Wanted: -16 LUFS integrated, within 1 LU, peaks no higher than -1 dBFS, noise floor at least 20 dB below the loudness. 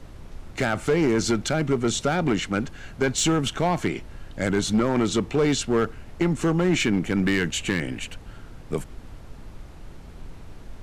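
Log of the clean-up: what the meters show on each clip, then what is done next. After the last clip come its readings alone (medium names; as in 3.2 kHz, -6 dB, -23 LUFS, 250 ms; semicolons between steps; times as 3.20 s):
clipped samples 1.7%; clipping level -15.0 dBFS; noise floor -43 dBFS; noise floor target -44 dBFS; loudness -24.0 LUFS; peak level -15.0 dBFS; loudness target -16.0 LUFS
-> clip repair -15 dBFS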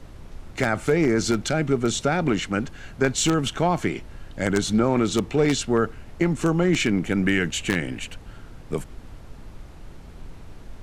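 clipped samples 0.0%; noise floor -43 dBFS; noise floor target -44 dBFS
-> noise print and reduce 6 dB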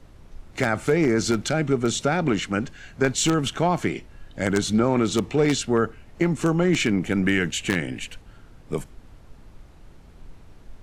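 noise floor -49 dBFS; loudness -23.5 LUFS; peak level -6.0 dBFS; loudness target -16.0 LUFS
-> trim +7.5 dB; peak limiter -1 dBFS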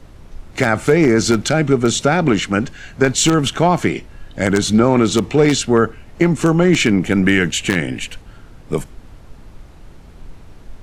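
loudness -16.0 LUFS; peak level -1.0 dBFS; noise floor -41 dBFS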